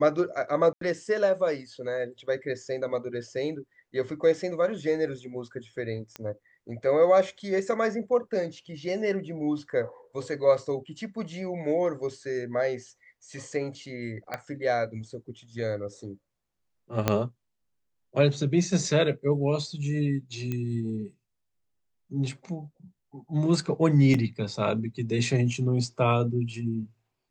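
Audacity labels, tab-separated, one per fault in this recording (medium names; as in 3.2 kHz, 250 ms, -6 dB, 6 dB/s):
0.730000	0.810000	dropout 83 ms
6.160000	6.160000	pop -20 dBFS
14.340000	14.340000	pop -18 dBFS
17.080000	17.080000	pop -7 dBFS
20.520000	20.520000	pop -19 dBFS
24.140000	24.140000	dropout 3.6 ms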